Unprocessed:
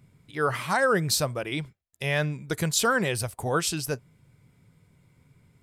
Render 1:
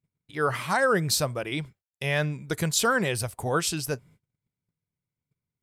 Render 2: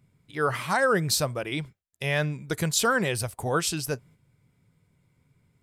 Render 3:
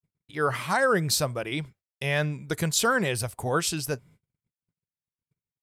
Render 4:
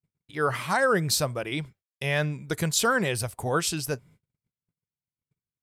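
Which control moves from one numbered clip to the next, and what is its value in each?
gate, range: -29 dB, -6 dB, -55 dB, -41 dB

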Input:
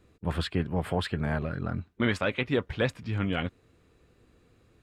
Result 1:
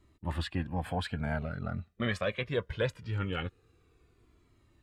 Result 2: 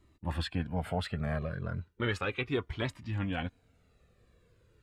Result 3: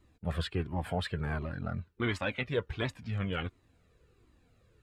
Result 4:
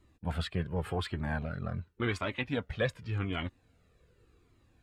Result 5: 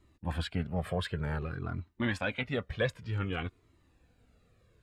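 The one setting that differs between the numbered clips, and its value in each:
Shepard-style flanger, rate: 0.22 Hz, 0.35 Hz, 1.4 Hz, 0.88 Hz, 0.54 Hz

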